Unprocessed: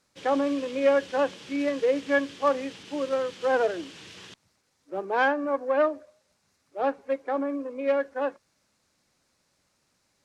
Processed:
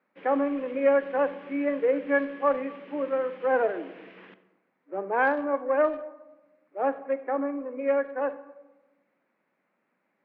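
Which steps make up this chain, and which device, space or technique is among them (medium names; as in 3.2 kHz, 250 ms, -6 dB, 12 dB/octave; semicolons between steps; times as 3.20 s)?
elliptic band-pass 200–2200 Hz, stop band 60 dB; saturated reverb return (on a send at -12 dB: reverberation RT60 1.1 s, pre-delay 25 ms + saturation -17.5 dBFS, distortion -17 dB)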